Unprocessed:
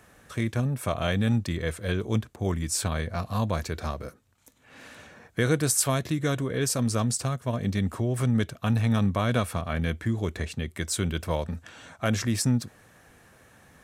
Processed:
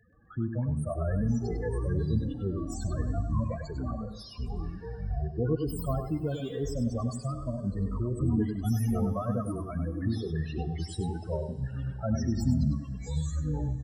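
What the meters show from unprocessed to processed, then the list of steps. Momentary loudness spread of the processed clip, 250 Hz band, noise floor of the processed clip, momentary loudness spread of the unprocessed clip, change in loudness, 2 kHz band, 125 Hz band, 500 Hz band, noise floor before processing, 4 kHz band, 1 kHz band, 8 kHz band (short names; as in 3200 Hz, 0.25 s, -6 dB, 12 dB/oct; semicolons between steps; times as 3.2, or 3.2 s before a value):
7 LU, -2.5 dB, -43 dBFS, 9 LU, -4.0 dB, -15.5 dB, -2.0 dB, -4.0 dB, -58 dBFS, -13.5 dB, -7.0 dB, -17.0 dB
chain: self-modulated delay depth 0.092 ms; reverb removal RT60 1.7 s; loudest bins only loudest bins 8; echoes that change speed 0.127 s, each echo -7 st, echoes 2; outdoor echo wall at 17 m, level -7 dB; Schroeder reverb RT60 3.2 s, combs from 30 ms, DRR 15.5 dB; gain -2.5 dB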